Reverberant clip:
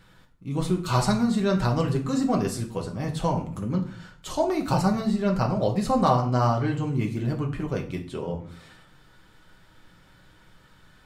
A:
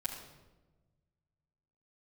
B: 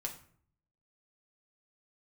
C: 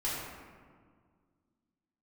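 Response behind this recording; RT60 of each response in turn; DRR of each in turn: B; 1.2, 0.55, 1.8 s; -9.5, 1.0, -7.5 dB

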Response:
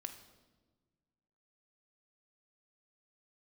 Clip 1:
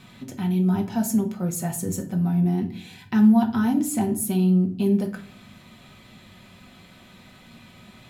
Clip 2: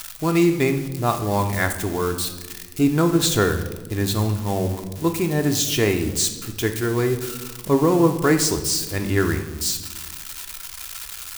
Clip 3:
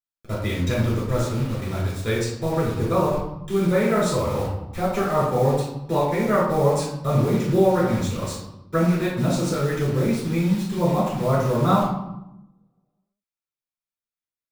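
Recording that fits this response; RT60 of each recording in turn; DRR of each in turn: 2; 0.50, 1.3, 0.85 s; 2.0, 5.5, -8.5 dB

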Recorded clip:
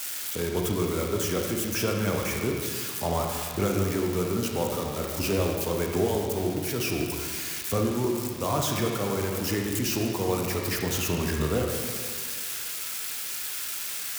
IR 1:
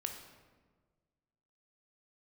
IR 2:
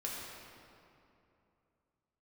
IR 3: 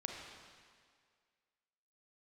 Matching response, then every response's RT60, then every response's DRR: 3; 1.5, 2.8, 2.0 s; 3.5, -4.5, 0.5 dB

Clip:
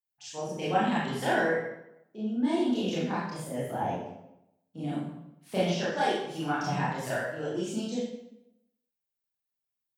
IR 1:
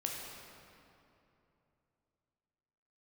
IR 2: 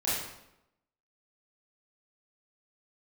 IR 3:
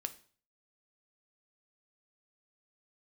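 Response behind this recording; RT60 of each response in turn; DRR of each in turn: 2; 2.9, 0.85, 0.45 s; -1.5, -10.0, 9.0 dB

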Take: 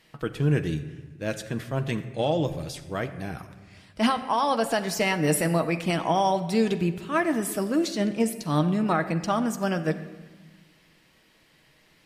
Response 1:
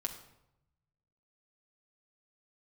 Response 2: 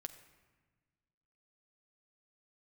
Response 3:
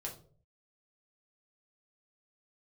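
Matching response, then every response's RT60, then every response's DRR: 2; 0.85, 1.4, 0.50 s; 1.5, 7.5, -2.0 dB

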